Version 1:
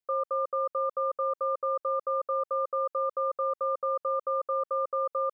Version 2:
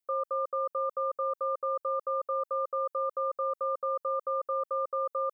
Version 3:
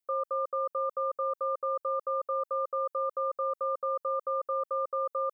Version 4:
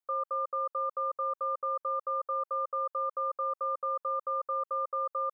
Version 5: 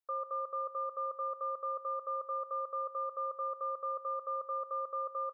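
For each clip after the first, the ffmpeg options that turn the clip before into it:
-af "crystalizer=i=1:c=0,volume=-2dB"
-af anull
-af "equalizer=f=1.1k:w=0.86:g=9.5,volume=-8.5dB"
-af "aecho=1:1:88|176|264:0.211|0.0655|0.0203,volume=-4.5dB"

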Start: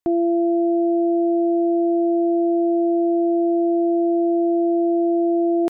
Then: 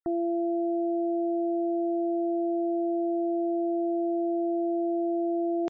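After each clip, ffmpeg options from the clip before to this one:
-af "afftfilt=real='re*gte(hypot(re,im),0.00562)':imag='im*gte(hypot(re,im),0.00562)':win_size=1024:overlap=0.75,equalizer=f=280:t=o:w=1.8:g=-3.5,alimiter=limit=-22dB:level=0:latency=1,volume=-1dB"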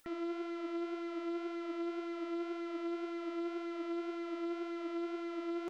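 -af "asoftclip=type=tanh:threshold=-37.5dB,acompressor=mode=upward:threshold=-48dB:ratio=2.5,flanger=delay=3.4:depth=5.7:regen=46:speed=1.9:shape=sinusoidal,volume=3.5dB"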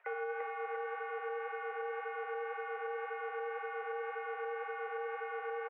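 -af "acompressor=threshold=-39dB:ratio=6,aecho=1:1:343|686|1029|1372|1715|2058|2401:0.708|0.361|0.184|0.0939|0.0479|0.0244|0.0125,highpass=f=410:t=q:w=0.5412,highpass=f=410:t=q:w=1.307,lowpass=f=2.1k:t=q:w=0.5176,lowpass=f=2.1k:t=q:w=0.7071,lowpass=f=2.1k:t=q:w=1.932,afreqshift=120,volume=9dB"

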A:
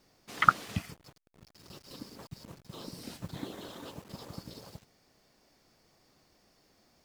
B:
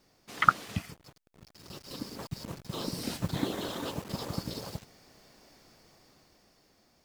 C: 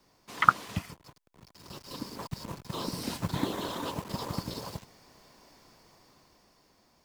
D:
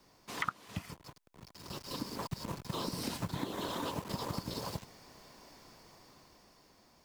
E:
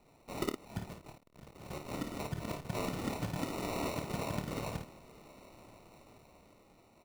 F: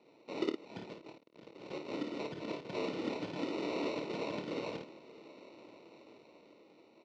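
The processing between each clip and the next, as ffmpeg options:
-af "dynaudnorm=f=310:g=9:m=9dB"
-filter_complex "[0:a]equalizer=f=1k:w=5.5:g=9,acrossover=split=200|1100[a][b][c];[a]acrusher=bits=2:mode=log:mix=0:aa=0.000001[d];[d][b][c]amix=inputs=3:normalize=0"
-af "acompressor=threshold=-35dB:ratio=6,volume=1.5dB"
-af "acrusher=samples=27:mix=1:aa=0.000001,aecho=1:1:27|54:0.316|0.447"
-filter_complex "[0:a]asplit=2[a][b];[b]aeval=exprs='0.0158*(abs(mod(val(0)/0.0158+3,4)-2)-1)':c=same,volume=-9dB[c];[a][c]amix=inputs=2:normalize=0,highpass=280,equalizer=f=320:t=q:w=4:g=6,equalizer=f=470:t=q:w=4:g=4,equalizer=f=740:t=q:w=4:g=-7,equalizer=f=1.2k:t=q:w=4:g=-7,equalizer=f=1.7k:t=q:w=4:g=-6,lowpass=f=4.7k:w=0.5412,lowpass=f=4.7k:w=1.3066"

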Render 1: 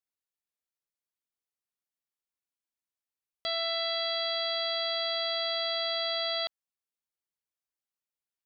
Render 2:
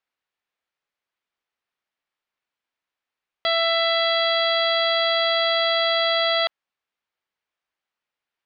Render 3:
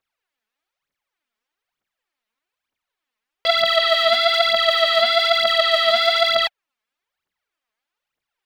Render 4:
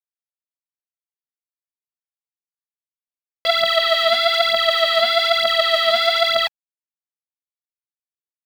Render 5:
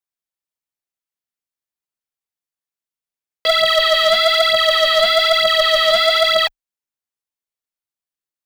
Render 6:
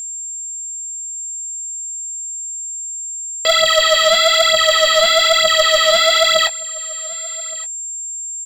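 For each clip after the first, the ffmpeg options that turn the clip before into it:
-af "lowpass=2.8k,lowshelf=f=400:g=-11,acontrast=85,volume=7.5dB"
-af "aphaser=in_gain=1:out_gain=1:delay=4.8:decay=0.73:speed=1.1:type=triangular"
-af "acrusher=bits=6:mix=0:aa=0.000001"
-filter_complex "[0:a]asplit=2[a][b];[b]aeval=exprs='0.251*(abs(mod(val(0)/0.251+3,4)-2)-1)':c=same,volume=-6dB[c];[a][c]amix=inputs=2:normalize=0,afreqshift=-25"
-filter_complex "[0:a]asplit=2[a][b];[b]adelay=21,volume=-11dB[c];[a][c]amix=inputs=2:normalize=0,aeval=exprs='val(0)+0.0501*sin(2*PI*7400*n/s)':c=same,aecho=1:1:1168:0.0841,volume=1.5dB"

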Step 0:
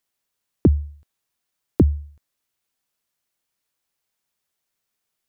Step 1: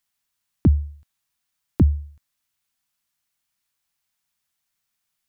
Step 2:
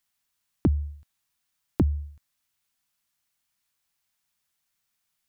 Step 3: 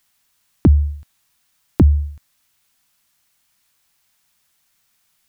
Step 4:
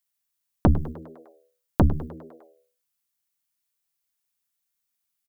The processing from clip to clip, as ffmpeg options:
-af "equalizer=f=440:w=1.3:g=-12,volume=1.5dB"
-af "acompressor=threshold=-19dB:ratio=6"
-af "alimiter=level_in=14dB:limit=-1dB:release=50:level=0:latency=1,volume=-1dB"
-filter_complex "[0:a]aeval=exprs='0.841*(cos(1*acos(clip(val(0)/0.841,-1,1)))-cos(1*PI/2))+0.266*(cos(3*acos(clip(val(0)/0.841,-1,1)))-cos(3*PI/2))+0.0376*(cos(4*acos(clip(val(0)/0.841,-1,1)))-cos(4*PI/2))+0.00668*(cos(5*acos(clip(val(0)/0.841,-1,1)))-cos(5*PI/2))+0.0841*(cos(6*acos(clip(val(0)/0.841,-1,1)))-cos(6*PI/2))':c=same,asplit=7[a][b][c][d][e][f][g];[b]adelay=101,afreqshift=82,volume=-17dB[h];[c]adelay=202,afreqshift=164,volume=-21.6dB[i];[d]adelay=303,afreqshift=246,volume=-26.2dB[j];[e]adelay=404,afreqshift=328,volume=-30.7dB[k];[f]adelay=505,afreqshift=410,volume=-35.3dB[l];[g]adelay=606,afreqshift=492,volume=-39.9dB[m];[a][h][i][j][k][l][m]amix=inputs=7:normalize=0,crystalizer=i=1:c=0,volume=-1dB"

